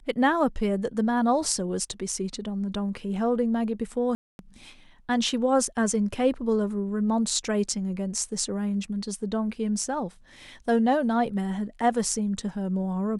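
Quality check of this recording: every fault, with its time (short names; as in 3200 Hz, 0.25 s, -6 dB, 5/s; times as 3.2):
4.15–4.39 gap 0.241 s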